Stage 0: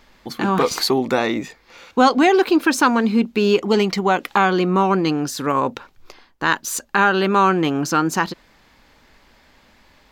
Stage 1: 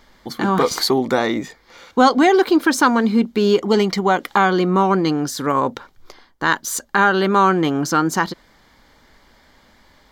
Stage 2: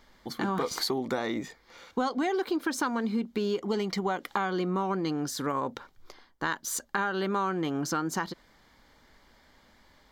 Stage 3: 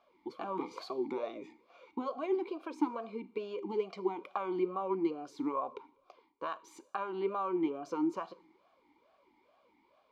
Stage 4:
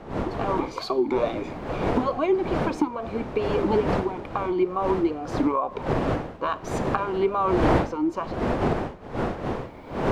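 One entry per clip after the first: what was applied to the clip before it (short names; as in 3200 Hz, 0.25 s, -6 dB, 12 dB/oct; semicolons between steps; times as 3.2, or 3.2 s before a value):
notch 2600 Hz, Q 5.2; gain +1 dB
compressor 4:1, threshold -19 dBFS, peak gain reduction 10 dB; gain -7.5 dB
two-slope reverb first 0.51 s, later 1.6 s, from -17 dB, DRR 14 dB; vowel sweep a-u 2.3 Hz; gain +4.5 dB
wind noise 600 Hz -36 dBFS; recorder AGC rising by 15 dB/s; gain +3 dB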